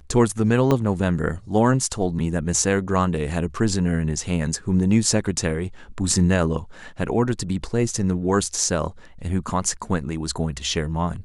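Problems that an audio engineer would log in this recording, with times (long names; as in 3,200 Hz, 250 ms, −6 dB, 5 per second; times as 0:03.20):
0:00.71: drop-out 2.8 ms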